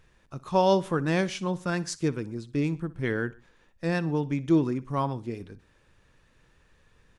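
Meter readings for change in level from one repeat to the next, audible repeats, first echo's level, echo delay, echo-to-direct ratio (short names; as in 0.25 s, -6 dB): -5.5 dB, 2, -19.5 dB, 61 ms, -18.5 dB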